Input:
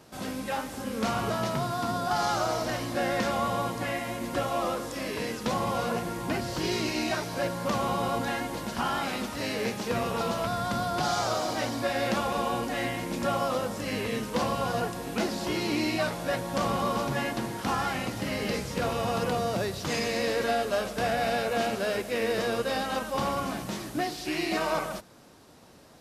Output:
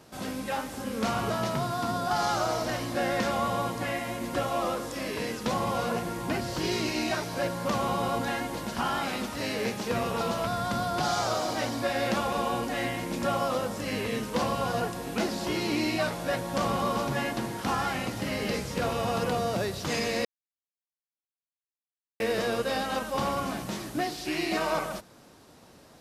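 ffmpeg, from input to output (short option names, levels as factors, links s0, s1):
-filter_complex "[0:a]asplit=3[s0][s1][s2];[s0]atrim=end=20.25,asetpts=PTS-STARTPTS,afade=t=out:st=20.246:d=0.004:c=hsin[s3];[s1]atrim=start=20.25:end=22.2,asetpts=PTS-STARTPTS,volume=0[s4];[s2]atrim=start=22.2,asetpts=PTS-STARTPTS,afade=t=in:d=0.004:c=hsin[s5];[s3][s4][s5]concat=n=3:v=0:a=1"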